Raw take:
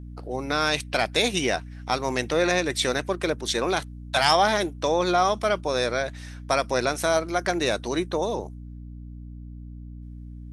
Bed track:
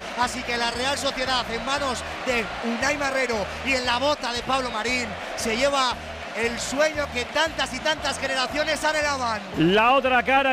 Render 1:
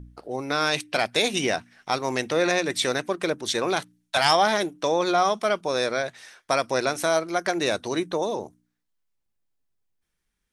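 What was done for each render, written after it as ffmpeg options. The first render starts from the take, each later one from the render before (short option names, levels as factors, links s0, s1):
-af "bandreject=f=60:t=h:w=4,bandreject=f=120:t=h:w=4,bandreject=f=180:t=h:w=4,bandreject=f=240:t=h:w=4,bandreject=f=300:t=h:w=4"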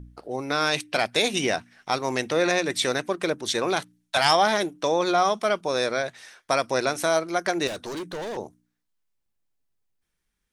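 -filter_complex "[0:a]asettb=1/sr,asplit=3[s0][s1][s2];[s0]atrim=end=7.674[s3];[s1]atrim=start=7.67:end=8.37,asetpts=PTS-STARTPTS,afade=t=in:d=0.004:c=qsin,afade=t=out:st=0.696:d=0.004:c=qsin,volume=31.6,asoftclip=hard,volume=0.0316[s4];[s2]atrim=start=8.366[s5];[s3][s4]acrossfade=d=0.004:c1=hsin:c2=qsin[s6];[s6][s5]acrossfade=d=0.004:c1=qsin:c2=hsin"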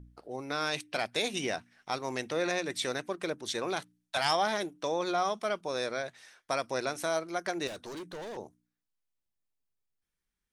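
-af "volume=0.376"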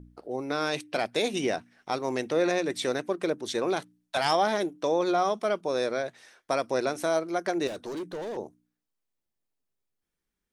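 -af "equalizer=f=360:w=0.54:g=7.5"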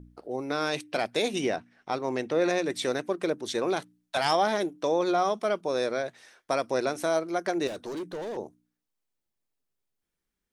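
-filter_complex "[0:a]asettb=1/sr,asplit=3[s0][s1][s2];[s0]atrim=end=1.484[s3];[s1]atrim=start=1.48:end=2.42,asetpts=PTS-STARTPTS,afade=t=in:d=0.004:c=qsin,afade=t=out:st=0.936:d=0.004:c=qsin,lowpass=f=3800:p=1[s4];[s2]atrim=start=2.416[s5];[s3][s4]acrossfade=d=0.004:c1=hsin:c2=qsin[s6];[s6][s5]acrossfade=d=0.004:c1=qsin:c2=hsin"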